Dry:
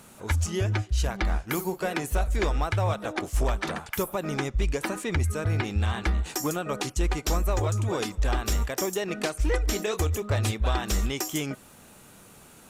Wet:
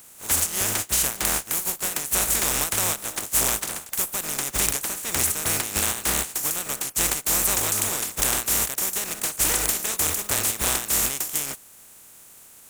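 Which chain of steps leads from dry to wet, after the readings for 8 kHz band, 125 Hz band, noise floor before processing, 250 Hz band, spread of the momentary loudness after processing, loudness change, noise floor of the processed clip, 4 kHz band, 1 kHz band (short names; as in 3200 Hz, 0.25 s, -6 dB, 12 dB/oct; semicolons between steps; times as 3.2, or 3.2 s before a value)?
+15.5 dB, -11.0 dB, -51 dBFS, -5.0 dB, 5 LU, +6.0 dB, -49 dBFS, +7.5 dB, +0.5 dB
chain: spectral contrast lowered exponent 0.26; resonant high shelf 6000 Hz +6 dB, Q 1.5; gain -2 dB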